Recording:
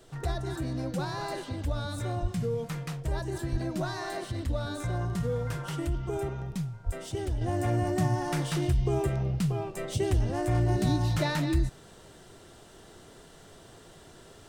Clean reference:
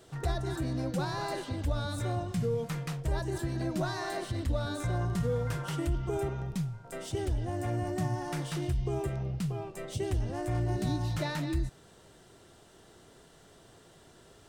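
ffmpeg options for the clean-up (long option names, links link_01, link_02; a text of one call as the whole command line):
ffmpeg -i in.wav -filter_complex "[0:a]asplit=3[link_01][link_02][link_03];[link_01]afade=type=out:start_time=2.21:duration=0.02[link_04];[link_02]highpass=frequency=140:width=0.5412,highpass=frequency=140:width=1.3066,afade=type=in:start_time=2.21:duration=0.02,afade=type=out:start_time=2.33:duration=0.02[link_05];[link_03]afade=type=in:start_time=2.33:duration=0.02[link_06];[link_04][link_05][link_06]amix=inputs=3:normalize=0,asplit=3[link_07][link_08][link_09];[link_07]afade=type=out:start_time=3.51:duration=0.02[link_10];[link_08]highpass=frequency=140:width=0.5412,highpass=frequency=140:width=1.3066,afade=type=in:start_time=3.51:duration=0.02,afade=type=out:start_time=3.63:duration=0.02[link_11];[link_09]afade=type=in:start_time=3.63:duration=0.02[link_12];[link_10][link_11][link_12]amix=inputs=3:normalize=0,asplit=3[link_13][link_14][link_15];[link_13]afade=type=out:start_time=6.85:duration=0.02[link_16];[link_14]highpass=frequency=140:width=0.5412,highpass=frequency=140:width=1.3066,afade=type=in:start_time=6.85:duration=0.02,afade=type=out:start_time=6.97:duration=0.02[link_17];[link_15]afade=type=in:start_time=6.97:duration=0.02[link_18];[link_16][link_17][link_18]amix=inputs=3:normalize=0,agate=range=-21dB:threshold=-44dB,asetnsamples=nb_out_samples=441:pad=0,asendcmd='7.41 volume volume -5dB',volume=0dB" out.wav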